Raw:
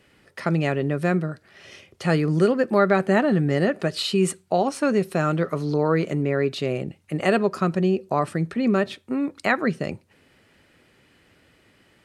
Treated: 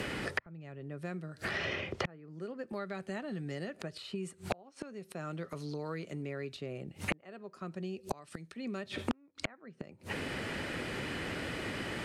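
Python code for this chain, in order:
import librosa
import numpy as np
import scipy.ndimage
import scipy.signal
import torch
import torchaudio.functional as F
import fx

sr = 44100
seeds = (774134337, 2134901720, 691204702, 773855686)

y = fx.gate_flip(x, sr, shuts_db=-23.0, range_db=-41)
y = (np.mod(10.0 ** (23.5 / 20.0) * y + 1.0, 2.0) - 1.0) / 10.0 ** (23.5 / 20.0)
y = fx.env_lowpass_down(y, sr, base_hz=2000.0, full_db=-40.0)
y = fx.band_squash(y, sr, depth_pct=100)
y = y * 10.0 ** (14.0 / 20.0)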